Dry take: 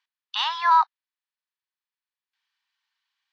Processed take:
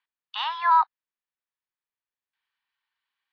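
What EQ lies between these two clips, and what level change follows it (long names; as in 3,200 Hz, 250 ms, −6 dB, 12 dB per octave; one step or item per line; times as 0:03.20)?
high-frequency loss of the air 260 metres
0.0 dB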